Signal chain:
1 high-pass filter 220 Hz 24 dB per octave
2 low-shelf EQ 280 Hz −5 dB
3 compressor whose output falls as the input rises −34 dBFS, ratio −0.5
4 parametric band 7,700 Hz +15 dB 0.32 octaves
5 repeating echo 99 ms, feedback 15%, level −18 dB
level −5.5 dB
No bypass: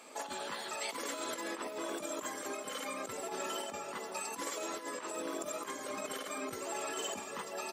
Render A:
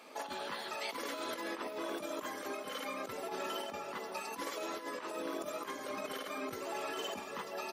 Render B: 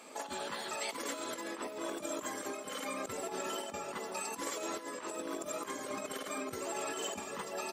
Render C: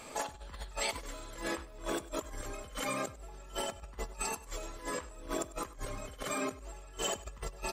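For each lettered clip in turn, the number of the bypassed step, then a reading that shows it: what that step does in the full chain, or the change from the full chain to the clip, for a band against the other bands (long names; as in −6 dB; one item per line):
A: 4, 8 kHz band −8.5 dB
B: 2, 125 Hz band +3.0 dB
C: 1, 125 Hz band +13.0 dB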